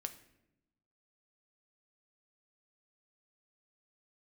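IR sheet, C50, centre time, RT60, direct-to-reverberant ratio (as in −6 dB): 13.5 dB, 7 ms, 0.85 s, 7.5 dB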